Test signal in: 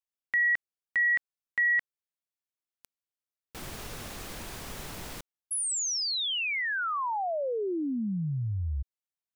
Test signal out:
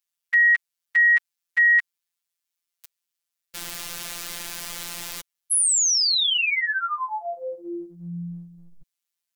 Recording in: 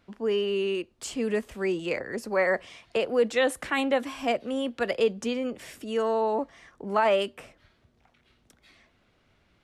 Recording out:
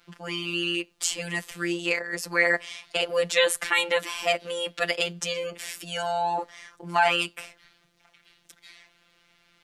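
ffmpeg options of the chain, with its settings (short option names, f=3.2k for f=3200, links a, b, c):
-af "tiltshelf=f=1.1k:g=-7.5,afftfilt=real='hypot(re,im)*cos(PI*b)':imag='0':win_size=1024:overlap=0.75,volume=6.5dB"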